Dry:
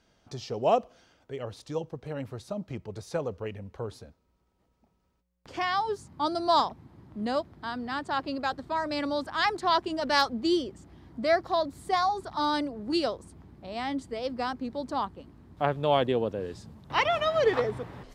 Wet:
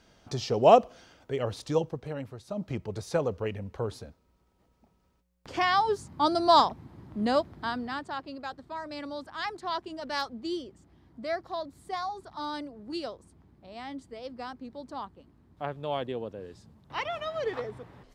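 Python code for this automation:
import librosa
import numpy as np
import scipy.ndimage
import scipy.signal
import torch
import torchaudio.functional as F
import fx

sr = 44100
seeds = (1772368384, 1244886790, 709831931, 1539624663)

y = fx.gain(x, sr, db=fx.line((1.78, 6.0), (2.42, -5.5), (2.64, 3.5), (7.66, 3.5), (8.24, -8.0)))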